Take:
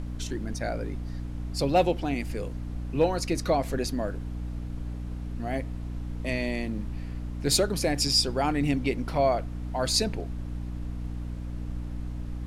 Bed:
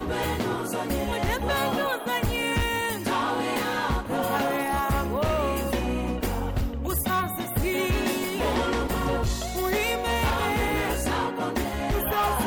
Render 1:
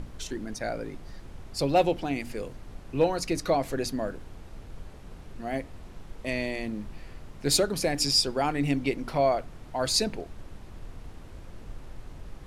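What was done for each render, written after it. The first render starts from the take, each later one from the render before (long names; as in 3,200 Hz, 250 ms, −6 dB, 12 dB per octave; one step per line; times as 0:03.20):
mains-hum notches 60/120/180/240/300 Hz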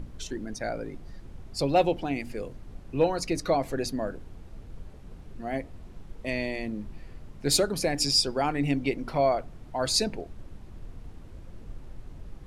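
broadband denoise 6 dB, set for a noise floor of −46 dBFS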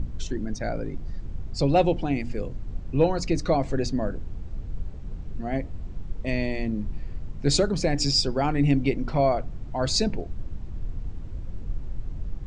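Butterworth low-pass 8,000 Hz 48 dB per octave
low-shelf EQ 220 Hz +11.5 dB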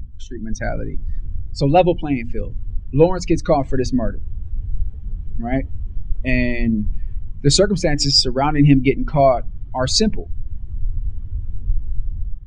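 spectral dynamics exaggerated over time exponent 1.5
automatic gain control gain up to 13 dB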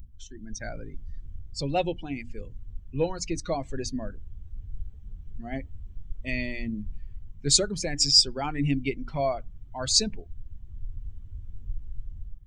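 first-order pre-emphasis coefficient 0.8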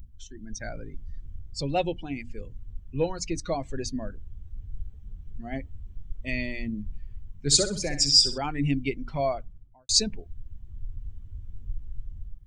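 0:07.04–0:08.38: flutter between parallel walls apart 10.8 metres, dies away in 0.37 s
0:09.31–0:09.89: fade out and dull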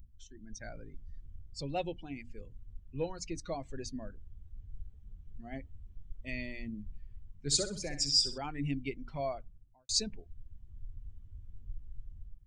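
level −9 dB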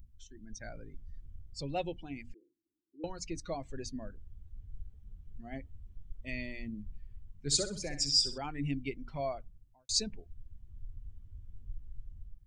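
0:02.34–0:03.04: flat-topped band-pass 330 Hz, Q 5.2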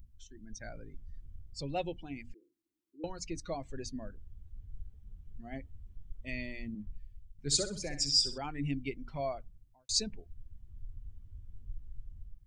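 0:06.75–0:07.39: multiband upward and downward expander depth 100%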